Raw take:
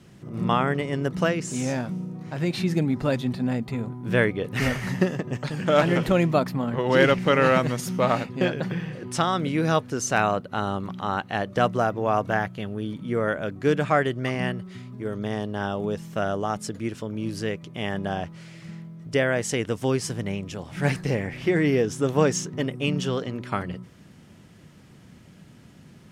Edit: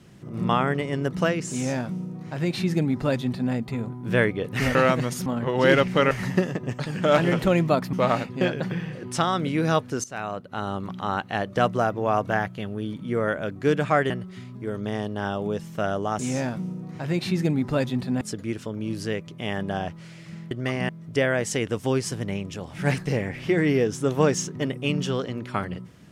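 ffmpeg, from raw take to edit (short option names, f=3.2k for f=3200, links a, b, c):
-filter_complex "[0:a]asplit=11[a][b][c][d][e][f][g][h][i][j][k];[a]atrim=end=4.752[l];[b]atrim=start=7.418:end=7.932[m];[c]atrim=start=6.568:end=7.422[n];[d]atrim=start=4.748:end=6.572[o];[e]atrim=start=7.928:end=10.04,asetpts=PTS-STARTPTS,afade=t=out:st=2.108:d=0.004:c=hsin:silence=0.141254[p];[f]atrim=start=10.04:end=14.102,asetpts=PTS-STARTPTS,afade=t=in:d=0.88:silence=0.141254[q];[g]atrim=start=14.478:end=16.572[r];[h]atrim=start=1.508:end=3.532[s];[i]atrim=start=16.568:end=18.872[t];[j]atrim=start=14.098:end=14.482[u];[k]atrim=start=18.868[v];[l][m]acrossfade=d=0.004:c1=hsin:c2=hsin[w];[w][n]acrossfade=d=0.004:c1=hsin:c2=hsin[x];[x][o]acrossfade=d=0.004:c1=hsin:c2=hsin[y];[p][q]concat=n=2:v=0:a=1[z];[y][z]acrossfade=d=0.004:c1=hsin:c2=hsin[aa];[aa][r]acrossfade=d=0.004:c1=hsin:c2=hsin[ab];[ab][s]acrossfade=d=0.004:c1=hsin:c2=hsin[ac];[ac][t]acrossfade=d=0.004:c1=hsin:c2=hsin[ad];[ad][u]acrossfade=d=0.004:c1=hsin:c2=hsin[ae];[ae][v]acrossfade=d=0.004:c1=hsin:c2=hsin"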